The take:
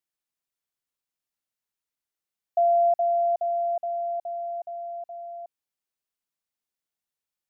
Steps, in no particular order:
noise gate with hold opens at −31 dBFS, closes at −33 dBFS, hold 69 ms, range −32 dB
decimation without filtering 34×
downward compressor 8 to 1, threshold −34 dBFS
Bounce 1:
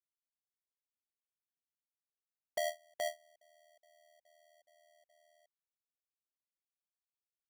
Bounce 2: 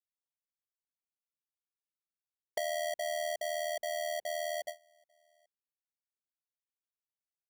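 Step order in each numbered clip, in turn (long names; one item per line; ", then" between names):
downward compressor, then decimation without filtering, then noise gate with hold
decimation without filtering, then noise gate with hold, then downward compressor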